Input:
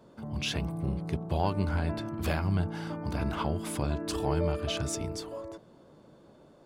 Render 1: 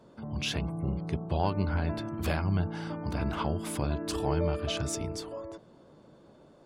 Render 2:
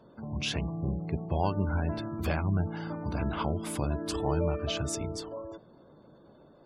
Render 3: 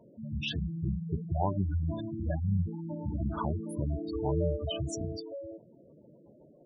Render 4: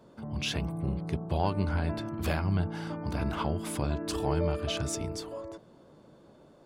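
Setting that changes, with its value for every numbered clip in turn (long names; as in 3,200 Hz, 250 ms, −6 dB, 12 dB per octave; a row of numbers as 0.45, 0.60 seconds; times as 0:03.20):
gate on every frequency bin, under each frame's peak: −45, −30, −10, −55 decibels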